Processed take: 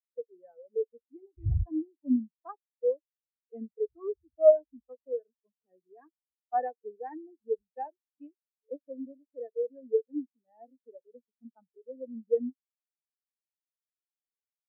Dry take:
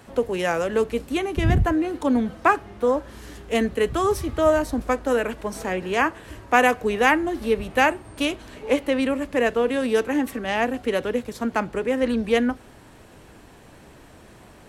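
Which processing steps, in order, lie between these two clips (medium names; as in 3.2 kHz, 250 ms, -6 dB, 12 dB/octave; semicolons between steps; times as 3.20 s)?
rattle on loud lows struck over -25 dBFS, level -15 dBFS; spectral contrast expander 4:1; trim -5 dB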